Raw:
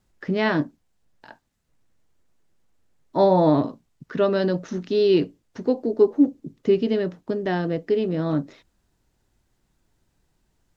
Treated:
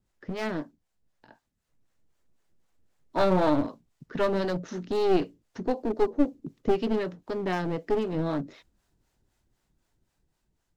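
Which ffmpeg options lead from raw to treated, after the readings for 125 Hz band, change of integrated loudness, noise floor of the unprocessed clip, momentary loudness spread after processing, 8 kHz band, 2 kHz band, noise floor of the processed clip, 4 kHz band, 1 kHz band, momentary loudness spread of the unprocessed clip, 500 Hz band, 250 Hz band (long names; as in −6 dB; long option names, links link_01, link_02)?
−6.0 dB, −6.0 dB, −71 dBFS, 11 LU, can't be measured, −5.0 dB, −78 dBFS, −5.5 dB, −3.0 dB, 11 LU, −6.0 dB, −6.0 dB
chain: -filter_complex "[0:a]acrossover=split=480[link_01][link_02];[link_01]aeval=exprs='val(0)*(1-0.7/2+0.7/2*cos(2*PI*3.9*n/s))':channel_layout=same[link_03];[link_02]aeval=exprs='val(0)*(1-0.7/2-0.7/2*cos(2*PI*3.9*n/s))':channel_layout=same[link_04];[link_03][link_04]amix=inputs=2:normalize=0,aeval=exprs='clip(val(0),-1,0.0355)':channel_layout=same,dynaudnorm=framelen=530:gausssize=7:maxgain=5dB,volume=-4dB"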